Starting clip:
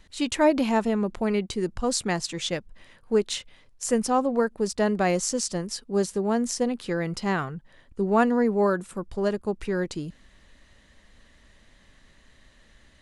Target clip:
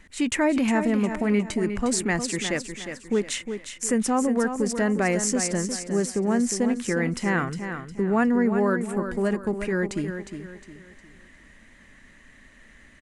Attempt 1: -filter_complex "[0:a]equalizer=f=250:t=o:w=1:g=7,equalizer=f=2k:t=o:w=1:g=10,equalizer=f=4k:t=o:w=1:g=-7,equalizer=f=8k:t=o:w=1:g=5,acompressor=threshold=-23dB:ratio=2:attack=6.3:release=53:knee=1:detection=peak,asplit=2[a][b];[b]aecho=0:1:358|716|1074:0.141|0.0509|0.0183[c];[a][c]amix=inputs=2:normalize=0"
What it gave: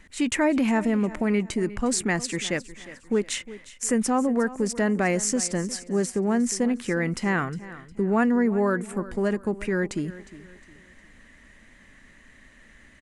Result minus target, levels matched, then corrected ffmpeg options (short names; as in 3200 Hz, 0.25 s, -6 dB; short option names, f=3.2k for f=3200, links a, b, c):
echo-to-direct -8.5 dB
-filter_complex "[0:a]equalizer=f=250:t=o:w=1:g=7,equalizer=f=2k:t=o:w=1:g=10,equalizer=f=4k:t=o:w=1:g=-7,equalizer=f=8k:t=o:w=1:g=5,acompressor=threshold=-23dB:ratio=2:attack=6.3:release=53:knee=1:detection=peak,asplit=2[a][b];[b]aecho=0:1:358|716|1074|1432:0.376|0.135|0.0487|0.0175[c];[a][c]amix=inputs=2:normalize=0"